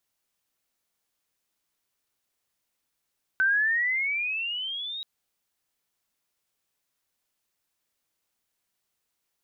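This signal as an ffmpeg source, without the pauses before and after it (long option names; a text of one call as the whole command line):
ffmpeg -f lavfi -i "aevalsrc='pow(10,(-19-13.5*t/1.63)/20)*sin(2*PI*1520*1.63/(16*log(2)/12)*(exp(16*log(2)/12*t/1.63)-1))':duration=1.63:sample_rate=44100" out.wav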